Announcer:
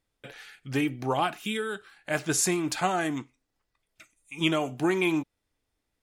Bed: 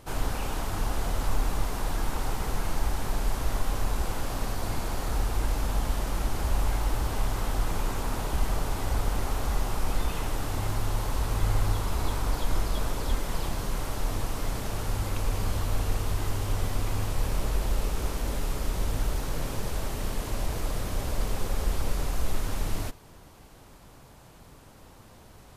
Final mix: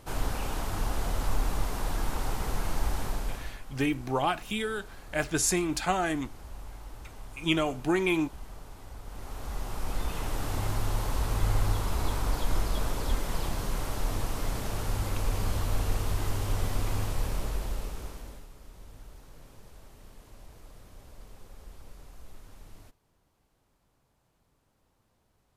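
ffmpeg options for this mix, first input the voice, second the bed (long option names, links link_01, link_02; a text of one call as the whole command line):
ffmpeg -i stem1.wav -i stem2.wav -filter_complex "[0:a]adelay=3050,volume=-1dB[link_01];[1:a]volume=14.5dB,afade=type=out:start_time=3:duration=0.58:silence=0.16788,afade=type=in:start_time=9.03:duration=1.49:silence=0.158489,afade=type=out:start_time=16.95:duration=1.53:silence=0.105925[link_02];[link_01][link_02]amix=inputs=2:normalize=0" out.wav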